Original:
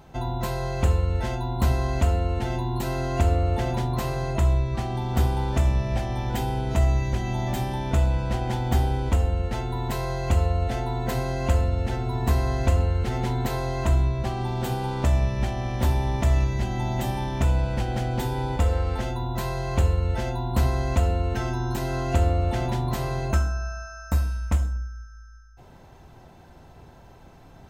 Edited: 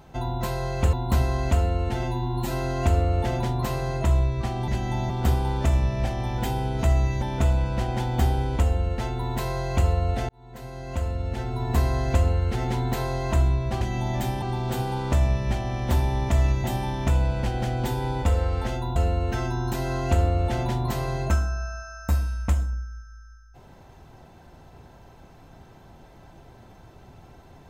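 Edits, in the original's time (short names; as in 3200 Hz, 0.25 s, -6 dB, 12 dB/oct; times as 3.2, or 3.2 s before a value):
0.93–1.43 cut
2.53–2.85 stretch 1.5×
7.14–7.75 move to 14.34
10.82–12.32 fade in
16.56–16.98 move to 5.02
19.3–20.99 cut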